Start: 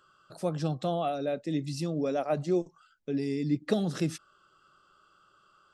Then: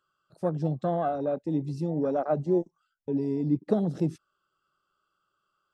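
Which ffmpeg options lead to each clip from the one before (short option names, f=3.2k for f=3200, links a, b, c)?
-af "afwtdn=0.0224,volume=2.5dB"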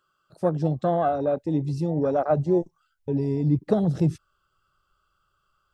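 -af "asubboost=boost=11:cutoff=79,volume=5.5dB"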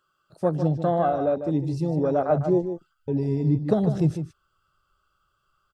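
-filter_complex "[0:a]asplit=2[a][b];[b]adelay=151.6,volume=-9dB,highshelf=f=4k:g=-3.41[c];[a][c]amix=inputs=2:normalize=0"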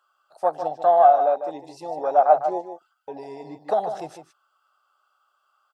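-af "highpass=f=760:t=q:w=4.3"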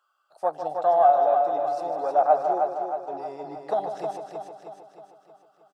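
-af "aecho=1:1:314|628|942|1256|1570|1884|2198:0.531|0.276|0.144|0.0746|0.0388|0.0202|0.0105,volume=-3.5dB"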